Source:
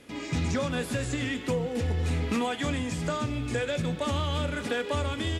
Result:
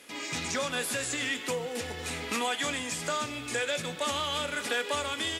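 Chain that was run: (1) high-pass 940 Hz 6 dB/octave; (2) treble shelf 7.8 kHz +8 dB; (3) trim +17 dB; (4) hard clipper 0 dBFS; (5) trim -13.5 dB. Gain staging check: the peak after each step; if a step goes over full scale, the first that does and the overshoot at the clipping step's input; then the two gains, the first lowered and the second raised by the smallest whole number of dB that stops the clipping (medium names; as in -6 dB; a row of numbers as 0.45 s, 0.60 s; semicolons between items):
-21.5 dBFS, -21.0 dBFS, -4.0 dBFS, -4.0 dBFS, -17.5 dBFS; nothing clips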